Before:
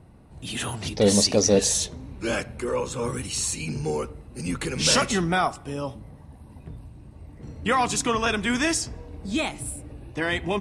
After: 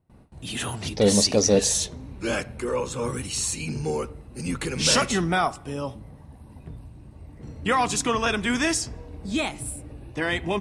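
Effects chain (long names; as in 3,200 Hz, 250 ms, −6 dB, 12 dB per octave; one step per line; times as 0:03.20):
noise gate with hold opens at −42 dBFS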